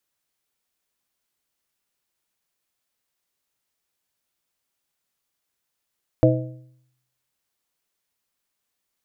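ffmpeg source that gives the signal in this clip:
-f lavfi -i "aevalsrc='0.2*pow(10,-3*t/0.76)*sin(2*PI*127*t)+0.188*pow(10,-3*t/0.577)*sin(2*PI*317.5*t)+0.178*pow(10,-3*t/0.501)*sin(2*PI*508*t)+0.168*pow(10,-3*t/0.469)*sin(2*PI*635*t)':d=1.55:s=44100"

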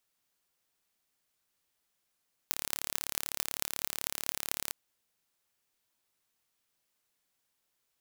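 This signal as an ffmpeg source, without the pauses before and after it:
-f lavfi -i "aevalsrc='0.841*eq(mod(n,1228),0)*(0.5+0.5*eq(mod(n,9824),0))':d=2.21:s=44100"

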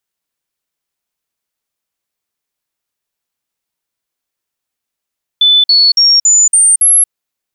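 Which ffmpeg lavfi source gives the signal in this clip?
-f lavfi -i "aevalsrc='0.596*clip(min(mod(t,0.28),0.23-mod(t,0.28))/0.005,0,1)*sin(2*PI*3500*pow(2,floor(t/0.28)/3)*mod(t,0.28))':d=1.68:s=44100"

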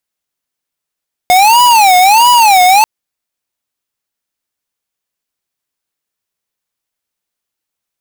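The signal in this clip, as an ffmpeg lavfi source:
-f lavfi -i "aevalsrc='0.501*(2*lt(mod((852.5*t-128.5/(2*PI*1.5)*sin(2*PI*1.5*t)),1),0.5)-1)':d=1.54:s=44100"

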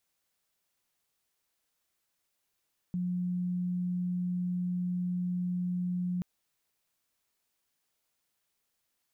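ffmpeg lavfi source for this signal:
-f lavfi -i "aevalsrc='0.0355*sin(2*PI*179*t)':d=3.28:s=44100"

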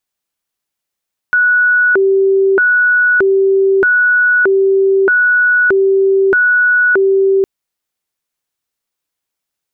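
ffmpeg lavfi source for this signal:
-f lavfi -i "aevalsrc='0.422*sin(2*PI*(929*t+541/0.8*(0.5-abs(mod(0.8*t,1)-0.5))))':d=6.11:s=44100"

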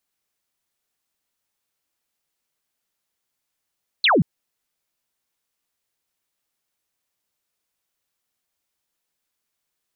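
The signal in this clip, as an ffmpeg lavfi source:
-f lavfi -i "aevalsrc='0.224*clip(t/0.002,0,1)*clip((0.18-t)/0.002,0,1)*sin(2*PI*4500*0.18/log(130/4500)*(exp(log(130/4500)*t/0.18)-1))':d=0.18:s=44100"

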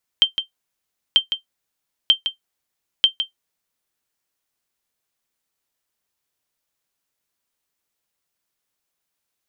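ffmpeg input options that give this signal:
-f lavfi -i "aevalsrc='0.631*(sin(2*PI*3140*mod(t,0.94))*exp(-6.91*mod(t,0.94)/0.12)+0.355*sin(2*PI*3140*max(mod(t,0.94)-0.16,0))*exp(-6.91*max(mod(t,0.94)-0.16,0)/0.12))':d=3.76:s=44100"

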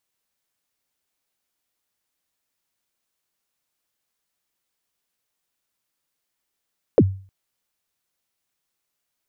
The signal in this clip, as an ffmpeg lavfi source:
-f lavfi -i "aevalsrc='0.473*pow(10,-3*t/0.41)*sin(2*PI*(580*0.05/log(96/580)*(exp(log(96/580)*min(t,0.05)/0.05)-1)+96*max(t-0.05,0)))':d=0.31:s=44100"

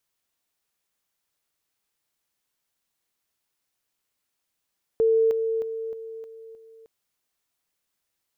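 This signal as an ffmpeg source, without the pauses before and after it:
-f lavfi -i "aevalsrc='pow(10,(-16.5-6*floor(t/0.31))/20)*sin(2*PI*449*t)':d=1.86:s=44100"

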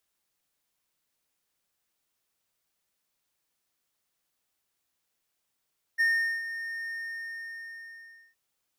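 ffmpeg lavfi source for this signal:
-f lavfi -i "aevalsrc='0.119*(1-4*abs(mod(1830*t+0.25,1)-0.5))':d=2.37:s=44100,afade=t=in:d=0.026,afade=t=out:st=0.026:d=0.413:silence=0.237,afade=t=out:st=0.92:d=1.45"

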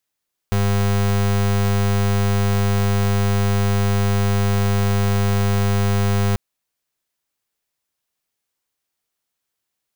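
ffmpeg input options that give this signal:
-f lavfi -i "aevalsrc='0.133*(2*lt(mod(100*t,1),0.34)-1)':d=5.84:s=44100"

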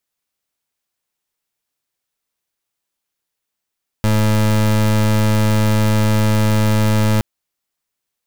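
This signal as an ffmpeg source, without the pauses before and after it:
-f lavfi -i "aevalsrc='0.2*(2*lt(mod(107*t,1),0.29)-1)':d=3.17:s=44100"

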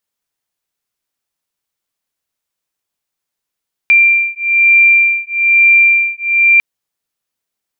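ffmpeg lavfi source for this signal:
-f lavfi -i "aevalsrc='0.316*(sin(2*PI*2370*t)+sin(2*PI*2371.1*t))':d=2.7:s=44100"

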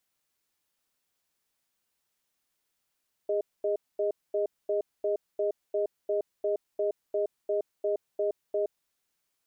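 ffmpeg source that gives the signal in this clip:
-f lavfi -i "aevalsrc='0.0422*(sin(2*PI*409*t)+sin(2*PI*621*t))*clip(min(mod(t,0.35),0.12-mod(t,0.35))/0.005,0,1)':d=5.5:s=44100"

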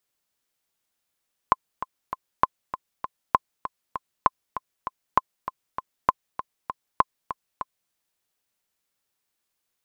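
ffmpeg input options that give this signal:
-f lavfi -i "aevalsrc='pow(10,(-3-12.5*gte(mod(t,3*60/197),60/197))/20)*sin(2*PI*1040*mod(t,60/197))*exp(-6.91*mod(t,60/197)/0.03)':d=6.39:s=44100"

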